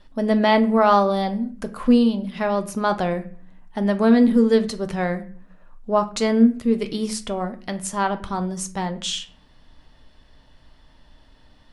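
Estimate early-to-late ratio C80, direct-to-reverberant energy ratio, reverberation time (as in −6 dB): 19.5 dB, 7.0 dB, 0.45 s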